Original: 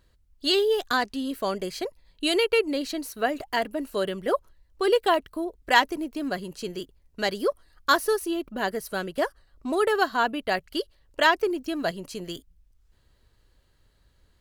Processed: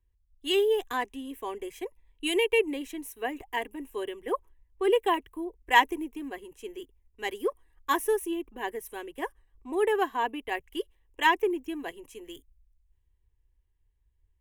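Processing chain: static phaser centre 920 Hz, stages 8; three bands expanded up and down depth 40%; trim -2 dB

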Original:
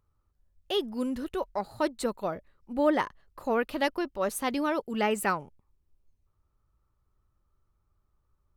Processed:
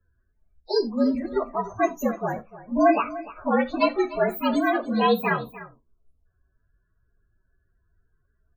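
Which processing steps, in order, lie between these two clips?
frequency axis rescaled in octaves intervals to 115%; loudest bins only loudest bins 32; delay 298 ms -16.5 dB; gated-style reverb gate 110 ms falling, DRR 10 dB; trim +8.5 dB

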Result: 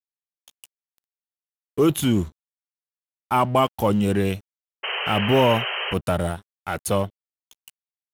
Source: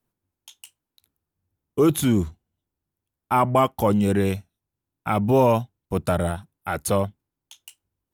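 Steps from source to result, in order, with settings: crossover distortion -42 dBFS; painted sound noise, 4.83–5.94 s, 380–3200 Hz -30 dBFS; dynamic bell 2.9 kHz, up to +8 dB, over -50 dBFS, Q 5

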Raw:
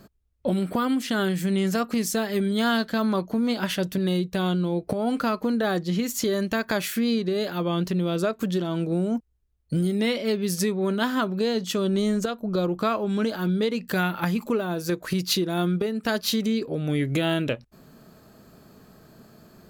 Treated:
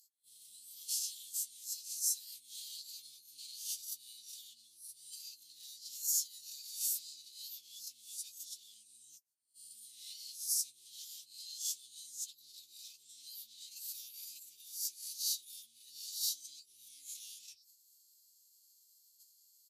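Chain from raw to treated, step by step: reverse spectral sustain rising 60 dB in 0.55 s; gate -45 dBFS, range -14 dB; compression 12:1, threshold -36 dBFS, peak gain reduction 19 dB; hard clipper -35.5 dBFS, distortion -15 dB; formant-preserving pitch shift -7.5 st; inverse Chebyshev high-pass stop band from 1.6 kHz, stop band 60 dB; doubling 14 ms -9 dB; trim +12.5 dB

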